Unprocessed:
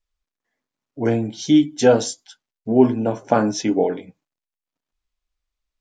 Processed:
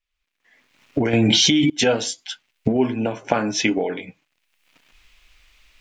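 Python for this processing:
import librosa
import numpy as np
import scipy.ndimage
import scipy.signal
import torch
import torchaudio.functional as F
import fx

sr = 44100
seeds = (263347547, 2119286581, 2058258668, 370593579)

y = fx.recorder_agc(x, sr, target_db=-7.5, rise_db_per_s=36.0, max_gain_db=30)
y = fx.peak_eq(y, sr, hz=2500.0, db=14.0, octaves=1.3)
y = fx.env_flatten(y, sr, amount_pct=100, at=(1.13, 1.7))
y = y * librosa.db_to_amplitude(-6.5)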